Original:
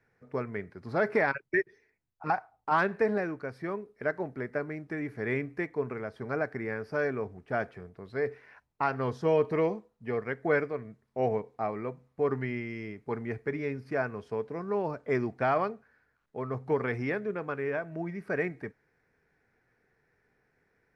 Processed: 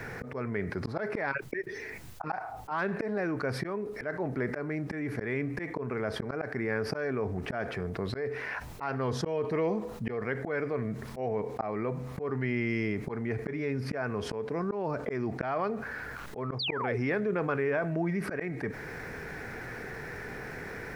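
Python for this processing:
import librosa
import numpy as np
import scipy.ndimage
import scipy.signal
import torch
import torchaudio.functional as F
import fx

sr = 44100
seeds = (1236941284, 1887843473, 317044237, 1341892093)

y = fx.spec_paint(x, sr, seeds[0], shape='fall', start_s=16.59, length_s=0.38, low_hz=370.0, high_hz=5000.0, level_db=-32.0)
y = fx.auto_swell(y, sr, attack_ms=534.0)
y = fx.env_flatten(y, sr, amount_pct=70)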